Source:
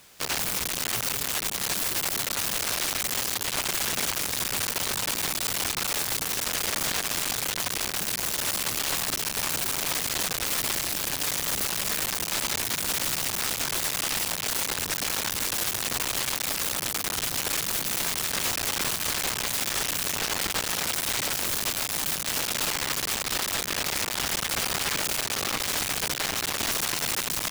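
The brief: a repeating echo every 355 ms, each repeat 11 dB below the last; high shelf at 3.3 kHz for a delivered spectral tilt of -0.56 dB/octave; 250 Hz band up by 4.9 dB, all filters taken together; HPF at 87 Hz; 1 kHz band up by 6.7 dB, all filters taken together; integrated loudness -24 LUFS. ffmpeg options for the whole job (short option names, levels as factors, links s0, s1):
-af "highpass=87,equalizer=f=250:t=o:g=6,equalizer=f=1000:t=o:g=7.5,highshelf=f=3300:g=5,aecho=1:1:355|710|1065:0.282|0.0789|0.0221,volume=0.708"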